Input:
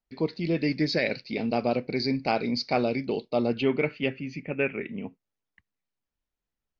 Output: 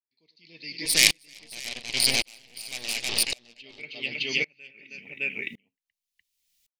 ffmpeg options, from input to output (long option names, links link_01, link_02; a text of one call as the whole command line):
ffmpeg -i in.wav -filter_complex "[0:a]asettb=1/sr,asplit=3[link_01][link_02][link_03];[link_01]atrim=end=0.854[link_04];[link_02]atrim=start=0.85:end=3.24,asetpts=PTS-STARTPTS,afade=type=in:duration=0.004:curve=qsin,afade=type=out:start_time=2.386:duration=0.004:curve=qsin,aeval=exprs='0.237*(cos(1*acos(clip(val(0)/0.237,-1,1)))-cos(1*PI/2))+0.0422*(cos(7*acos(clip(val(0)/0.237,-1,1)))-cos(7*PI/2))+0.0335*(cos(8*acos(clip(val(0)/0.237,-1,1)))-cos(8*PI/2))':channel_layout=same[link_05];[link_03]atrim=start=3.236[link_06];[link_04][link_05]acrossfade=duration=0.004:curve1=hsin:curve2=qsin[link_07];[link_07][link_06]acrossfade=duration=0.004:curve1=qsin:curve2=hsin,aecho=1:1:97|197|317|613:0.178|0.106|0.447|0.631,dynaudnorm=framelen=270:gausssize=5:maxgain=14.5dB,aexciter=amount=15.6:drive=3.2:freq=2100,aeval=exprs='val(0)*pow(10,-38*if(lt(mod(-0.9*n/s,1),2*abs(-0.9)/1000),1-mod(-0.9*n/s,1)/(2*abs(-0.9)/1000),(mod(-0.9*n/s,1)-2*abs(-0.9)/1000)/(1-2*abs(-0.9)/1000))/20)':channel_layout=same,volume=-14dB" out.wav